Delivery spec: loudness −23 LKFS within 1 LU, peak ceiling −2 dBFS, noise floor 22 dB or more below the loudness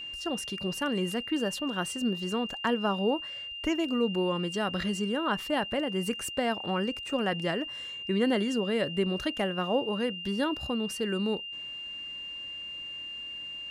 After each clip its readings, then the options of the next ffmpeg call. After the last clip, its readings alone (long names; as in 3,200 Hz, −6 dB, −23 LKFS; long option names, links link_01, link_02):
interfering tone 2,800 Hz; level of the tone −37 dBFS; integrated loudness −30.5 LKFS; sample peak −14.5 dBFS; target loudness −23.0 LKFS
→ -af "bandreject=frequency=2800:width=30"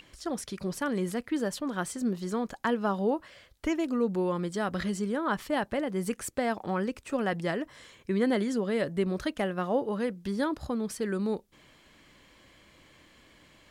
interfering tone none found; integrated loudness −31.0 LKFS; sample peak −14.5 dBFS; target loudness −23.0 LKFS
→ -af "volume=8dB"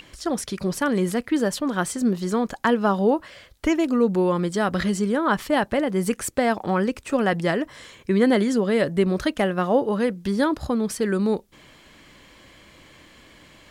integrated loudness −23.0 LKFS; sample peak −6.5 dBFS; background noise floor −52 dBFS